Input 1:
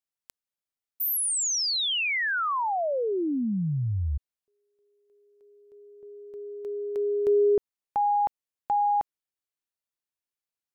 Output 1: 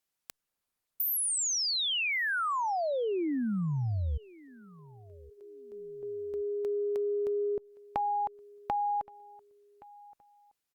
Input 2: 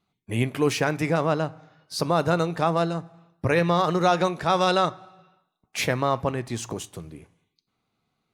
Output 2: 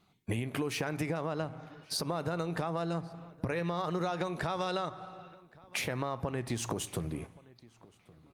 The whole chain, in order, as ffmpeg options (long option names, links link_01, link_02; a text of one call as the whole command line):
ffmpeg -i in.wav -filter_complex "[0:a]alimiter=limit=-20dB:level=0:latency=1:release=490,acompressor=threshold=-36dB:ratio=12:attack=11:release=128:knee=6:detection=rms,asplit=2[link_01][link_02];[link_02]adelay=1121,lowpass=frequency=2800:poles=1,volume=-22dB,asplit=2[link_03][link_04];[link_04]adelay=1121,lowpass=frequency=2800:poles=1,volume=0.32[link_05];[link_03][link_05]amix=inputs=2:normalize=0[link_06];[link_01][link_06]amix=inputs=2:normalize=0,volume=7dB" -ar 48000 -c:a libopus -b:a 48k out.opus